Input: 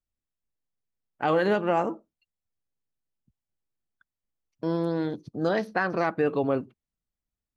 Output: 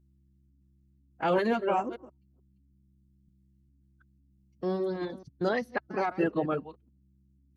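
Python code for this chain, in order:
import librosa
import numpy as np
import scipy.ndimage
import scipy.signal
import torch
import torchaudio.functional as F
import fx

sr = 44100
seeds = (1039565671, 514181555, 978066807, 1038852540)

y = fx.reverse_delay(x, sr, ms=218, wet_db=-8.0)
y = fx.dereverb_blind(y, sr, rt60_s=1.3)
y = fx.step_gate(y, sr, bpm=122, pattern='xxxx.xxx.xxxx', floor_db=-60.0, edge_ms=4.5)
y = fx.add_hum(y, sr, base_hz=60, snr_db=31)
y = fx.pitch_keep_formants(y, sr, semitones=2.0)
y = y * librosa.db_to_amplitude(-2.0)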